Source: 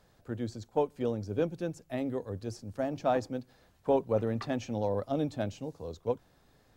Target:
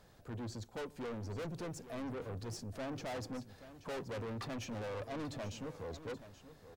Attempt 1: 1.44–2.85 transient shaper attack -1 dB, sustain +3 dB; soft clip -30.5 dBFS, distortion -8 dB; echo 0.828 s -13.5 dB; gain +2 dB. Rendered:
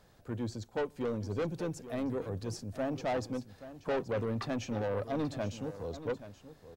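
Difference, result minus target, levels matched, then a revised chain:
soft clip: distortion -6 dB
1.44–2.85 transient shaper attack -1 dB, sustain +3 dB; soft clip -41.5 dBFS, distortion -2 dB; echo 0.828 s -13.5 dB; gain +2 dB

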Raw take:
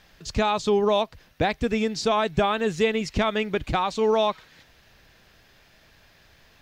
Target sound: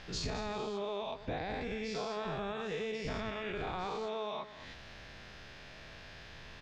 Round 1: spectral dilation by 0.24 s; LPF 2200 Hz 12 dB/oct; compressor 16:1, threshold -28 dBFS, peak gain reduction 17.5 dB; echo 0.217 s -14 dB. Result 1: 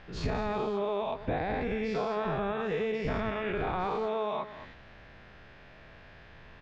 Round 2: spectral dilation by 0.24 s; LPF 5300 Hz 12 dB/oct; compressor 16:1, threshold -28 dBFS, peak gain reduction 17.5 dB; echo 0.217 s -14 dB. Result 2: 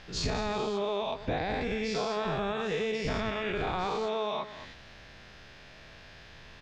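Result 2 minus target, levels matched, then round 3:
compressor: peak gain reduction -6.5 dB
spectral dilation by 0.24 s; LPF 5300 Hz 12 dB/oct; compressor 16:1, threshold -35 dBFS, peak gain reduction 24 dB; echo 0.217 s -14 dB

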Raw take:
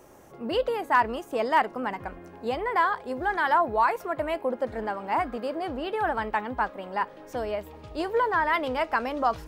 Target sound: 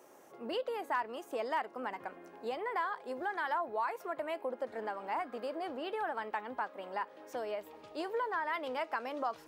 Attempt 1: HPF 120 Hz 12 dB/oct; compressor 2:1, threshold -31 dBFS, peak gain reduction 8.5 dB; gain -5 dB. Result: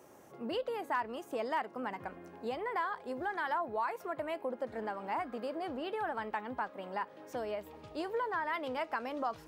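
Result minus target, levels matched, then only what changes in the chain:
125 Hz band +9.0 dB
change: HPF 300 Hz 12 dB/oct

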